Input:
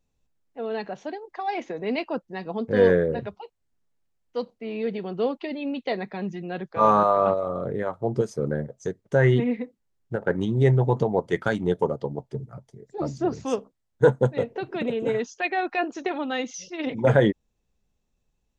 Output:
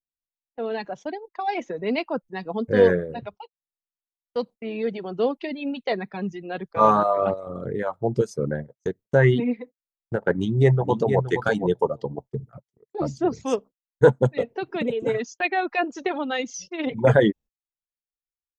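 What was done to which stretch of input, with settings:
10.33–11.23 s: echo throw 470 ms, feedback 10%, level -6 dB
whole clip: reverb removal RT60 1.2 s; gate -43 dBFS, range -32 dB; trim +2.5 dB

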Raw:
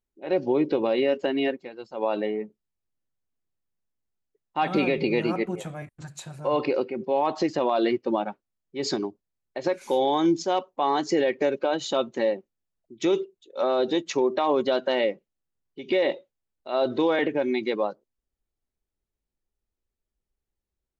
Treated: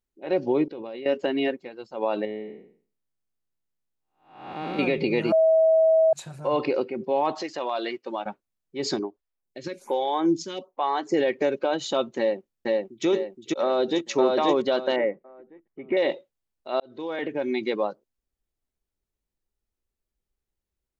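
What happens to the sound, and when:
0.64–1.06 s: level held to a coarse grid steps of 18 dB
2.25–4.79 s: spectral blur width 353 ms
5.32–6.13 s: bleep 644 Hz -15 dBFS
7.41–8.26 s: high-pass 940 Hz 6 dB/octave
8.99–11.14 s: lamp-driven phase shifter 1.2 Hz
12.18–13.06 s: echo throw 470 ms, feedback 40%, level -0.5 dB
13.65–14.08 s: echo throw 530 ms, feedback 25%, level -0.5 dB
14.96–15.97 s: Chebyshev low-pass 2.1 kHz, order 4
16.80–17.63 s: fade in

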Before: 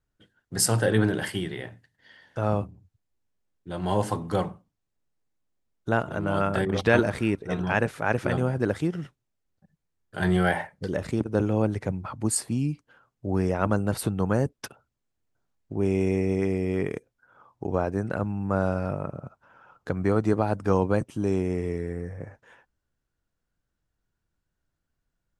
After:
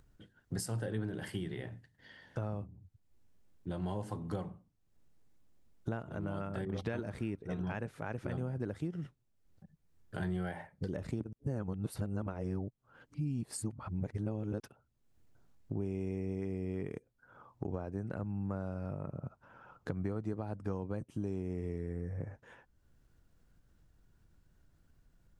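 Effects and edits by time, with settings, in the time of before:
11.33–14.60 s: reverse
whole clip: compression 4:1, threshold -38 dBFS; bass shelf 380 Hz +8.5 dB; upward compressor, threshold -50 dBFS; trim -4 dB

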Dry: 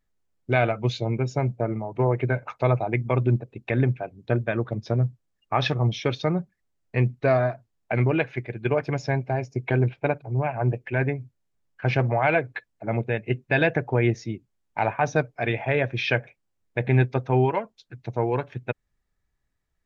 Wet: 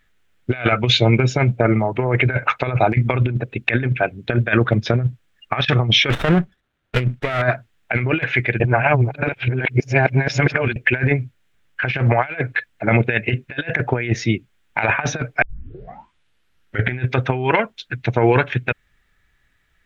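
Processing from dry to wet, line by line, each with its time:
6.10–7.42 s: sliding maximum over 17 samples
8.60–10.76 s: reverse
15.42 s: tape start 1.57 s
whole clip: high-order bell 2.2 kHz +10.5 dB; compressor with a negative ratio -24 dBFS, ratio -0.5; loudness maximiser +9 dB; trim -1 dB

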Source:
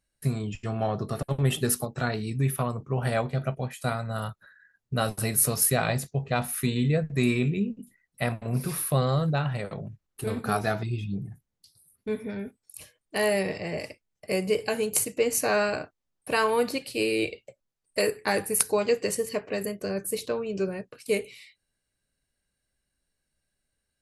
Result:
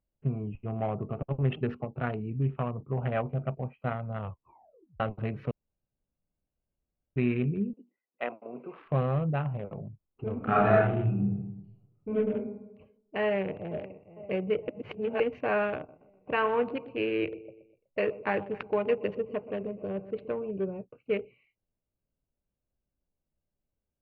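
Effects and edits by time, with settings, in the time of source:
4.20 s: tape stop 0.80 s
5.51–7.16 s: room tone
7.73–8.86 s: high-pass 300 Hz 24 dB/octave
10.37–12.31 s: reverb throw, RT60 0.93 s, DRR -6 dB
13.24–13.80 s: echo throw 460 ms, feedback 65%, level -15 dB
14.68–15.20 s: reverse
15.76–20.51 s: feedback delay 124 ms, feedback 46%, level -14 dB
whole clip: local Wiener filter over 25 samples; elliptic low-pass 2.8 kHz, stop band 70 dB; trim -2 dB

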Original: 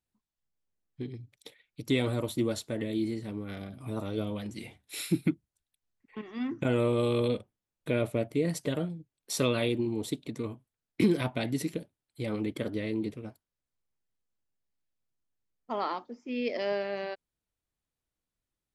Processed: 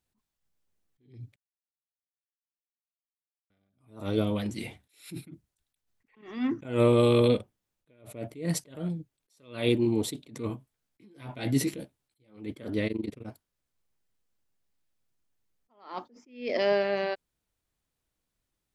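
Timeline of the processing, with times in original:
1.36–3.50 s: mute
10.48–12.37 s: doubling 15 ms -5.5 dB
12.87–13.27 s: AM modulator 23 Hz, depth 90%
whole clip: attacks held to a fixed rise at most 140 dB/s; trim +6 dB

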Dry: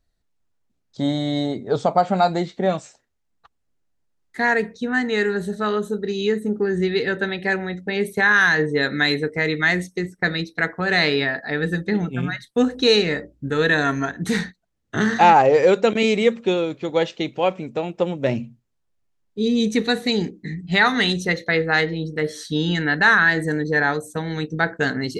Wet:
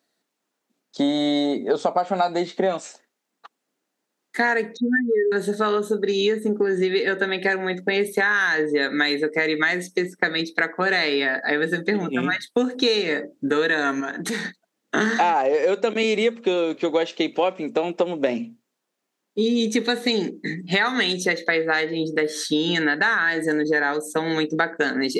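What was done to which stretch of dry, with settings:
4.77–5.32 s: spectral contrast enhancement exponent 3.8
14.00–14.45 s: compression, threshold -29 dBFS
whole clip: high-pass 230 Hz 24 dB/octave; compression 6:1, threshold -26 dBFS; trim +8 dB

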